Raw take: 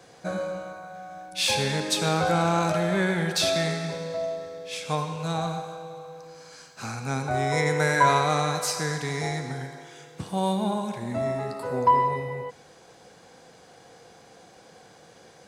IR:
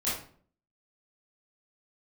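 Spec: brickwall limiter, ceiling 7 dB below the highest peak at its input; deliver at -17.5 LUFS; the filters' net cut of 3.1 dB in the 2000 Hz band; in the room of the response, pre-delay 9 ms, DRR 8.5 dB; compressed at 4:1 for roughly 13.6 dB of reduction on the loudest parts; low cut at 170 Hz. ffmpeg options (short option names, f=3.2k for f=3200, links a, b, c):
-filter_complex "[0:a]highpass=170,equalizer=f=2k:t=o:g=-4,acompressor=threshold=-32dB:ratio=4,alimiter=level_in=2.5dB:limit=-24dB:level=0:latency=1,volume=-2.5dB,asplit=2[a][b];[1:a]atrim=start_sample=2205,adelay=9[c];[b][c]afir=irnorm=-1:irlink=0,volume=-16dB[d];[a][d]amix=inputs=2:normalize=0,volume=18.5dB"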